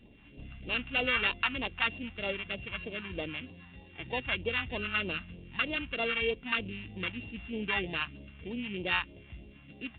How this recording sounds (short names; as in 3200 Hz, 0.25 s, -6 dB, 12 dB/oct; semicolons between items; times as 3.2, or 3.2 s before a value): a buzz of ramps at a fixed pitch in blocks of 16 samples; phasing stages 2, 3.2 Hz, lowest notch 440–1400 Hz; µ-law